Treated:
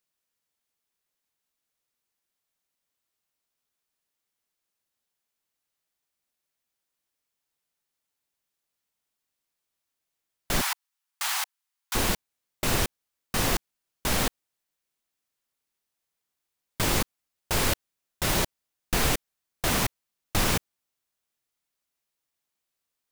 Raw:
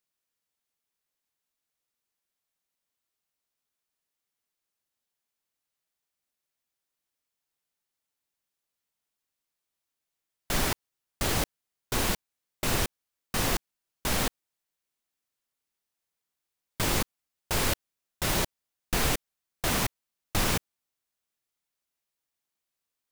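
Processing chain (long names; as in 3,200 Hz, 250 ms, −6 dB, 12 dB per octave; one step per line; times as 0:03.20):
0:10.61–0:11.95: Butterworth high-pass 800 Hz 48 dB per octave
level +2 dB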